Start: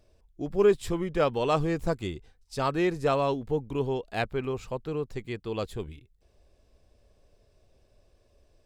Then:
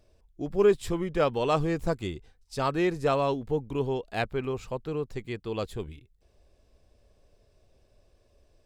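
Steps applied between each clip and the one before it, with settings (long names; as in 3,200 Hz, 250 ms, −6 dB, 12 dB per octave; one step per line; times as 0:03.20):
no processing that can be heard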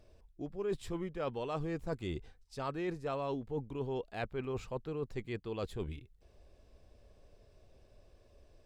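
high-shelf EQ 5,400 Hz −6 dB
reversed playback
downward compressor 5 to 1, threshold −37 dBFS, peak gain reduction 18.5 dB
reversed playback
level +1.5 dB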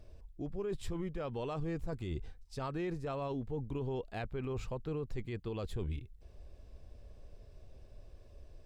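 low-shelf EQ 150 Hz +9 dB
brickwall limiter −31 dBFS, peak gain reduction 8 dB
level +1 dB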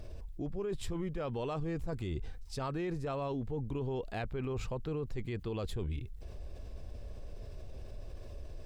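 envelope flattener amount 50%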